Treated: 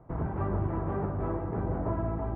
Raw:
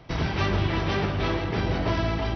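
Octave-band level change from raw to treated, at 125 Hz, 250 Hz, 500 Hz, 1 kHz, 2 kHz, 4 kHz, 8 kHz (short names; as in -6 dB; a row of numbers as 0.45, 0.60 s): -5.0 dB, -5.0 dB, -5.0 dB, -6.0 dB, -18.0 dB, under -35 dB, n/a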